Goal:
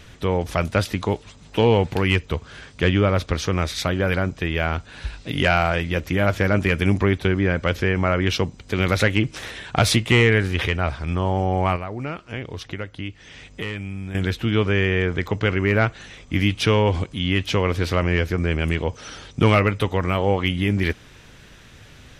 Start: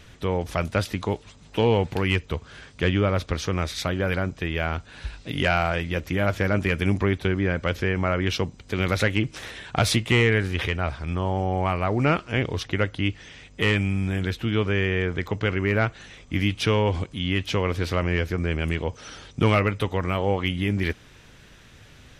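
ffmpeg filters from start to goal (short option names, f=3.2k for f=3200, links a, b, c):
-filter_complex "[0:a]asettb=1/sr,asplit=3[a][b][c];[a]atrim=end=11.764[d];[b]atrim=start=11.76:end=14.15,asetpts=PTS-STARTPTS,afade=t=in:d=0.004:c=qsin,afade=t=out:st=2.386:d=0.004:c=qsin,acompressor=threshold=-36dB:ratio=2.5[e];[c]atrim=start=14.146[f];[d][e]acrossfade=d=0.004:c1=hsin:c2=qsin[g];[g][f]acrossfade=d=0.004:c1=qsin:c2=hsin,volume=3.5dB"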